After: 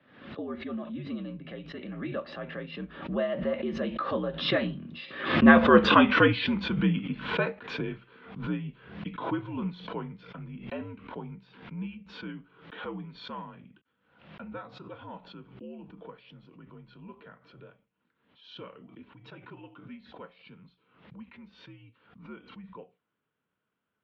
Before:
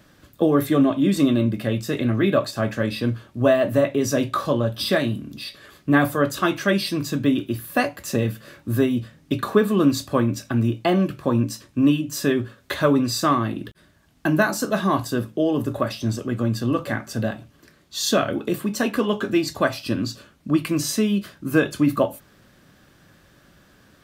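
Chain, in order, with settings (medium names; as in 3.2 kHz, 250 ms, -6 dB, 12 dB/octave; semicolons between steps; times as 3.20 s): Doppler pass-by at 5.78 s, 28 m/s, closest 14 m; mistuned SSB -72 Hz 230–3400 Hz; swell ahead of each attack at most 85 dB/s; trim +3 dB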